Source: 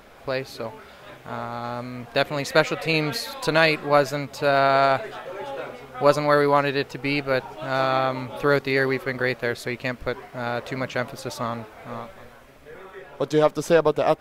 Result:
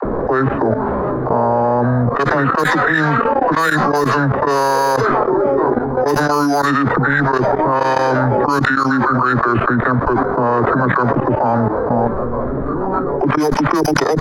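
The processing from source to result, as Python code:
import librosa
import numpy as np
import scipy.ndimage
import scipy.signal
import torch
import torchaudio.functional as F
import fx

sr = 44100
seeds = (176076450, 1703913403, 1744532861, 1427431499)

p1 = scipy.signal.sosfilt(scipy.signal.butter(2, 3000.0, 'lowpass', fs=sr, output='sos'), x)
p2 = fx.formant_shift(p1, sr, semitones=-6)
p3 = np.repeat(scipy.signal.resample_poly(p2, 1, 8), 8)[:len(p2)]
p4 = 10.0 ** (-13.5 / 20.0) * np.tanh(p3 / 10.0 ** (-13.5 / 20.0))
p5 = p3 + (p4 * librosa.db_to_amplitude(-8.5))
p6 = fx.low_shelf(p5, sr, hz=110.0, db=-4.5)
p7 = fx.dispersion(p6, sr, late='lows', ms=54.0, hz=340.0)
p8 = fx.env_lowpass(p7, sr, base_hz=370.0, full_db=-12.5)
p9 = fx.level_steps(p8, sr, step_db=19)
p10 = fx.peak_eq(p9, sr, hz=1400.0, db=12.5, octaves=1.7)
p11 = fx.env_flatten(p10, sr, amount_pct=100)
y = p11 * librosa.db_to_amplitude(-4.0)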